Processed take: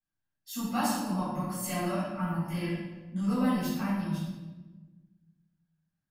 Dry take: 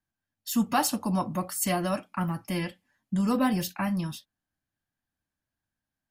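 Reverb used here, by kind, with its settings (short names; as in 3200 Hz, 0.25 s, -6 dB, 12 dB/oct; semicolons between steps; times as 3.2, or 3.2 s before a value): shoebox room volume 790 m³, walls mixed, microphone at 6.9 m; gain -17 dB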